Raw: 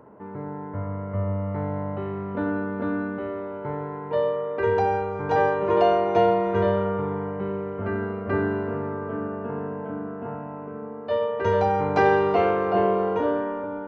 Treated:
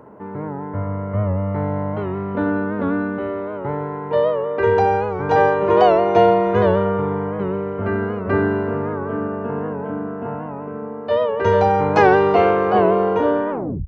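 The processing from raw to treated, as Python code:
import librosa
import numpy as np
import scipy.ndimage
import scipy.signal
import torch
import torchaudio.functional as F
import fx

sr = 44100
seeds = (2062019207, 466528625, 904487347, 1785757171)

y = fx.tape_stop_end(x, sr, length_s=0.38)
y = fx.record_warp(y, sr, rpm=78.0, depth_cents=100.0)
y = F.gain(torch.from_numpy(y), 6.0).numpy()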